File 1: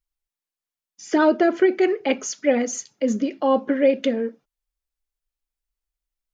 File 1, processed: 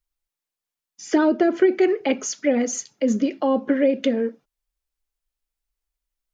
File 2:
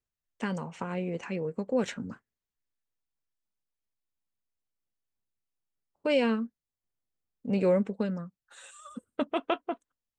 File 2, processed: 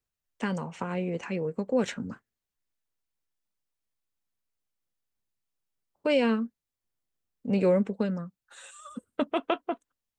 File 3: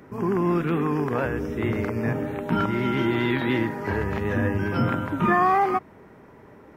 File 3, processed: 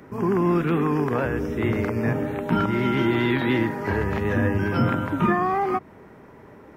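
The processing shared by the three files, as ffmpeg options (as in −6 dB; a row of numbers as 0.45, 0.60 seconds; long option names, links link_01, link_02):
-filter_complex "[0:a]acrossover=split=420[link_01][link_02];[link_02]acompressor=threshold=-24dB:ratio=6[link_03];[link_01][link_03]amix=inputs=2:normalize=0,volume=2dB"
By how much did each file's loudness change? 0.0, +1.5, +1.0 LU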